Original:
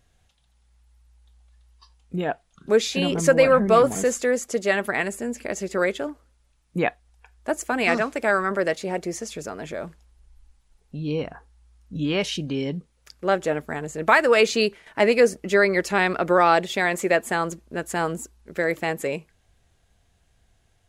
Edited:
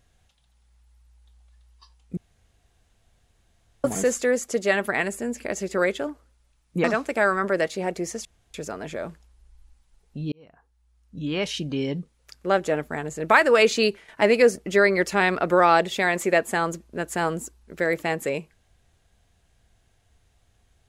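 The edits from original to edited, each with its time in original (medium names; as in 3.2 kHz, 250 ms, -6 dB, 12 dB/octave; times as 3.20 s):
2.17–3.84 s: room tone
6.84–7.91 s: delete
9.32 s: insert room tone 0.29 s
11.10–12.56 s: fade in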